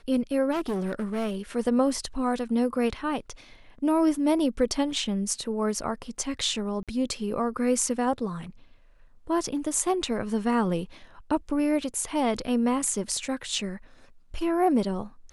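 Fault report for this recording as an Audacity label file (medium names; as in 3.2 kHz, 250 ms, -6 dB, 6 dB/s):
0.510000	1.360000	clipped -25 dBFS
6.830000	6.880000	dropout 47 ms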